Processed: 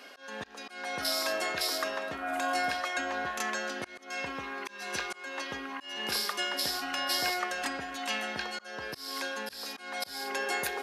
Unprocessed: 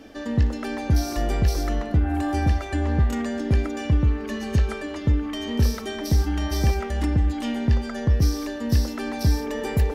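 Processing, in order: HPF 950 Hz 12 dB/oct; auto swell 0.251 s; speed mistake 48 kHz file played as 44.1 kHz; gain +4.5 dB

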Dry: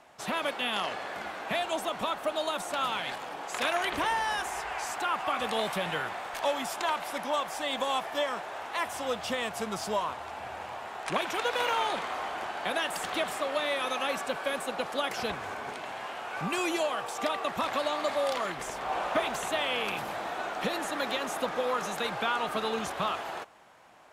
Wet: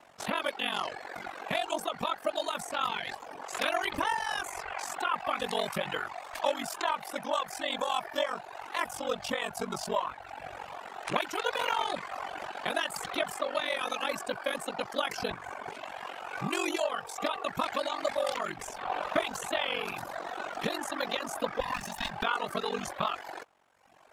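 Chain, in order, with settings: 21.6–22.23 minimum comb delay 1.1 ms; reverb removal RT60 1.2 s; ring modulator 23 Hz; gain +3 dB

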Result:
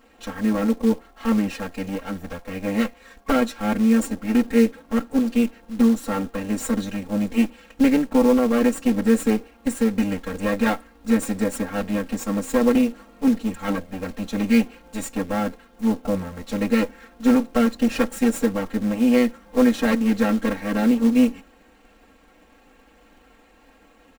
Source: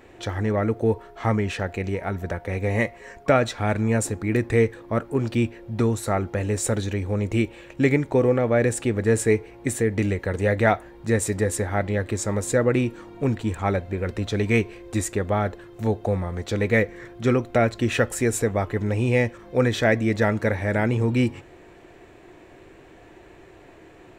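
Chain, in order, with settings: minimum comb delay 4.4 ms; comb 3.7 ms, depth 99%; short-mantissa float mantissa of 2-bit; dynamic EQ 270 Hz, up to +7 dB, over -29 dBFS, Q 0.76; gain -5.5 dB

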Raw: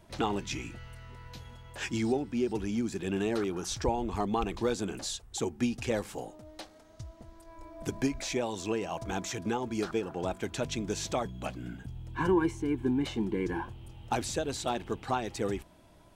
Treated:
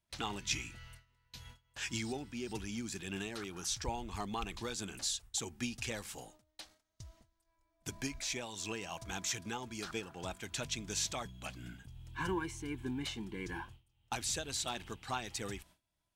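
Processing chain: passive tone stack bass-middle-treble 5-5-5; gate with hold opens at -47 dBFS; noise-modulated level, depth 55%; gain +11 dB

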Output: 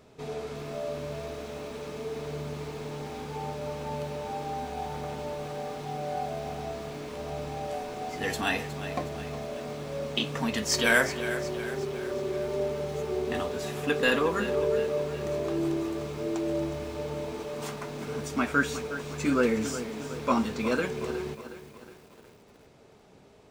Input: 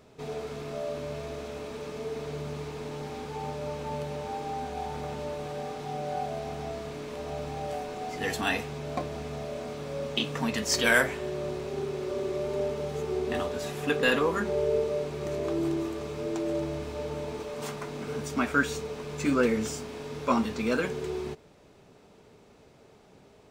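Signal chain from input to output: lo-fi delay 0.364 s, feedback 55%, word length 8-bit, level -12 dB

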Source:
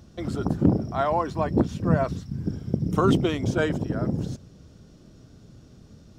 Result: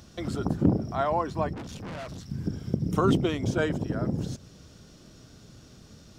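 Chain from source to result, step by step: 1.53–2.3 tube stage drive 34 dB, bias 0.45; mismatched tape noise reduction encoder only; gain -2.5 dB

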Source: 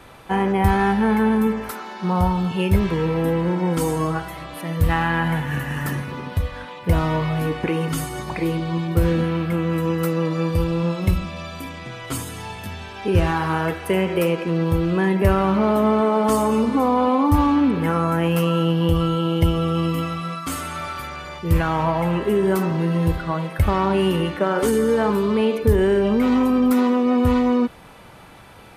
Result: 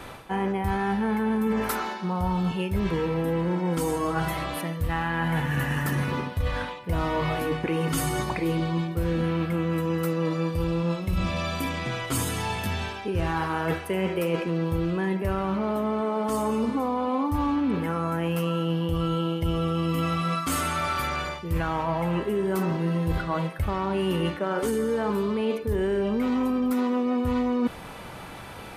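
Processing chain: de-hum 52.62 Hz, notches 3; reverse; compressor 10:1, threshold -27 dBFS, peak gain reduction 16.5 dB; reverse; gain +4.5 dB

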